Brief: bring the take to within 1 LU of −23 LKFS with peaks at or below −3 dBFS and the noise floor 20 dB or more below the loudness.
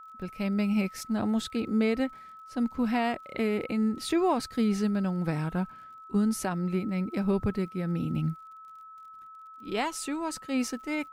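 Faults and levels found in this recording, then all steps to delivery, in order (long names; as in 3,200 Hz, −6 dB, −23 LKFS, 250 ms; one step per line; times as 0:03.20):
crackle rate 35 per second; interfering tone 1,300 Hz; level of the tone −45 dBFS; integrated loudness −29.5 LKFS; sample peak −15.5 dBFS; target loudness −23.0 LKFS
→ click removal
notch filter 1,300 Hz, Q 30
level +6.5 dB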